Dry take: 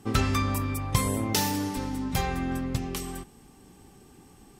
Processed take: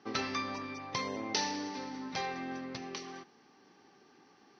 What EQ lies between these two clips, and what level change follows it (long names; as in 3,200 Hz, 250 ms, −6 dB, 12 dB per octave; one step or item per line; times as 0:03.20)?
high-pass filter 300 Hz 12 dB per octave
dynamic equaliser 1,400 Hz, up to −7 dB, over −49 dBFS, Q 2.1
Chebyshev low-pass with heavy ripple 6,100 Hz, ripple 6 dB
0.0 dB